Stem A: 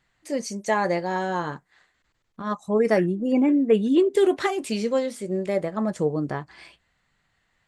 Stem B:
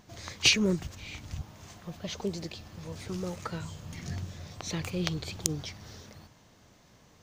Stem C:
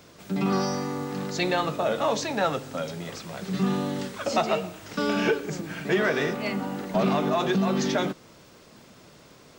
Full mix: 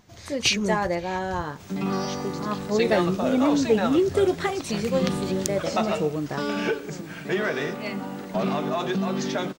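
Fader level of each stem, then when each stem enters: −2.0, 0.0, −2.0 decibels; 0.00, 0.00, 1.40 seconds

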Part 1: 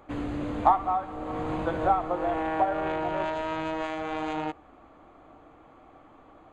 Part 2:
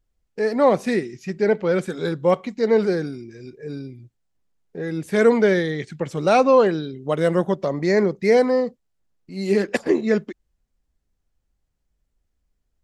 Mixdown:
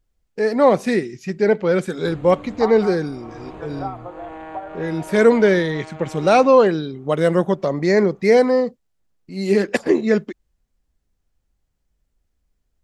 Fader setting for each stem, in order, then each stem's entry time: −6.0, +2.5 decibels; 1.95, 0.00 seconds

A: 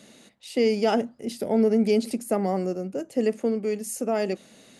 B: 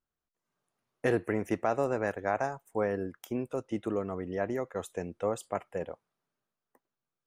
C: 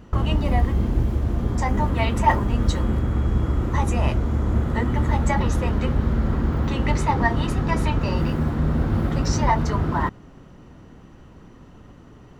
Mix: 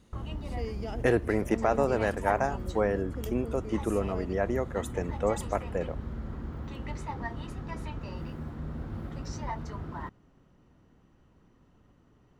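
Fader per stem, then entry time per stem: −17.0, +3.0, −16.0 decibels; 0.00, 0.00, 0.00 seconds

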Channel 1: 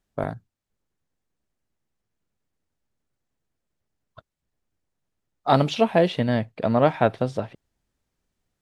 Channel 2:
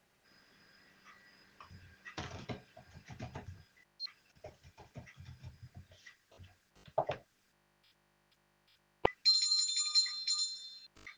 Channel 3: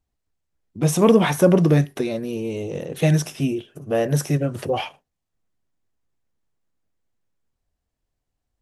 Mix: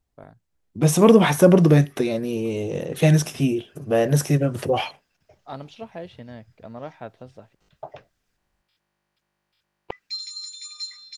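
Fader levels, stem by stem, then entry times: −17.5, −4.0, +1.5 decibels; 0.00, 0.85, 0.00 seconds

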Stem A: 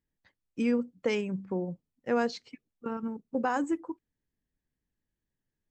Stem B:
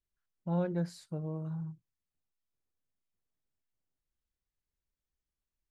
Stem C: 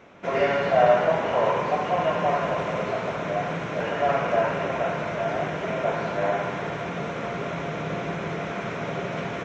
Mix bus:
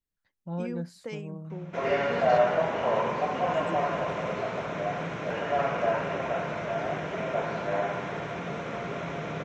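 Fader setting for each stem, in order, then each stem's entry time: −9.5, −2.5, −4.0 decibels; 0.00, 0.00, 1.50 seconds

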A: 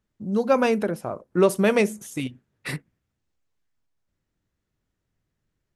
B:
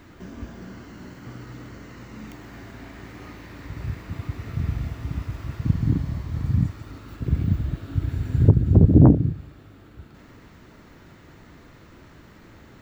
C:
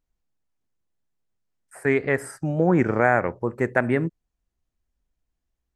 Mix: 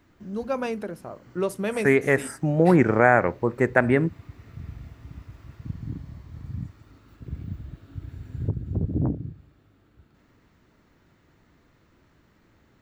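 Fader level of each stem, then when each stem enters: −8.0, −12.5, +2.0 decibels; 0.00, 0.00, 0.00 seconds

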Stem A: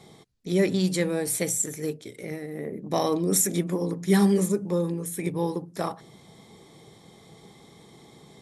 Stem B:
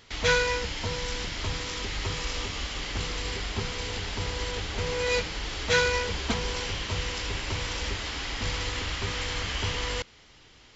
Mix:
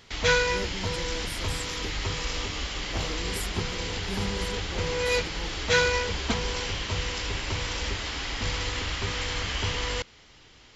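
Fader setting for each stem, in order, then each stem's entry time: −15.5, +1.0 decibels; 0.00, 0.00 seconds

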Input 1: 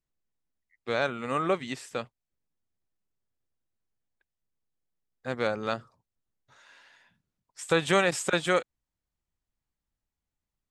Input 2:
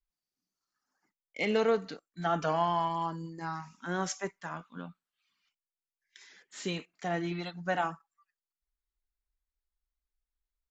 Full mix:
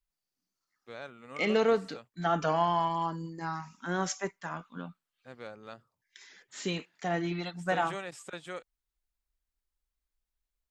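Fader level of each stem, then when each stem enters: −16.0, +1.5 decibels; 0.00, 0.00 seconds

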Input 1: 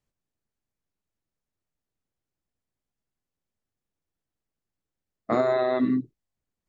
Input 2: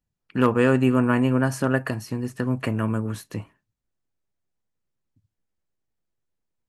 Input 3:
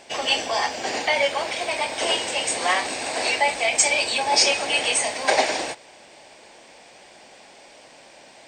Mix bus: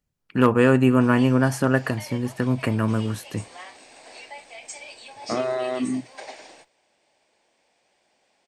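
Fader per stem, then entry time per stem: −2.5, +2.0, −20.0 decibels; 0.00, 0.00, 0.90 seconds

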